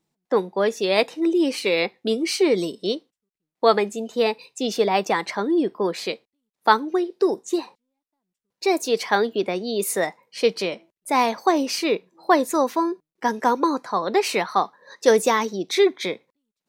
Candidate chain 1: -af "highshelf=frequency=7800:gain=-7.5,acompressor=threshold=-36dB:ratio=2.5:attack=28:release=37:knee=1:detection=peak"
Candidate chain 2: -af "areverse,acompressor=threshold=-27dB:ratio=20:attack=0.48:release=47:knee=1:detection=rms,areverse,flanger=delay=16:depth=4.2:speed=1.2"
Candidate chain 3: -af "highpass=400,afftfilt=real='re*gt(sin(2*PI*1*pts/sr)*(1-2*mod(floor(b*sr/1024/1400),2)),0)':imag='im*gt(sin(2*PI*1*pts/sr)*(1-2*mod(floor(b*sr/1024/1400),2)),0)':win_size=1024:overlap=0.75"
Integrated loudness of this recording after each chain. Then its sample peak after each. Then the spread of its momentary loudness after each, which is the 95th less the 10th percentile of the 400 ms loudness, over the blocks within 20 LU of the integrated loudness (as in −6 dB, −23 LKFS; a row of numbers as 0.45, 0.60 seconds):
−31.5, −37.0, −27.0 LKFS; −12.0, −24.5, −6.0 dBFS; 5, 6, 16 LU